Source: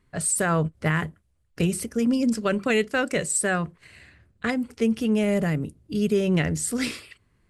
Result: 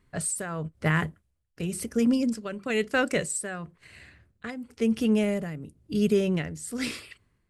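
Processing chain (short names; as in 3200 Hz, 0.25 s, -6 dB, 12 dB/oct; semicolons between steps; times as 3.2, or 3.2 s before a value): tremolo 0.99 Hz, depth 74%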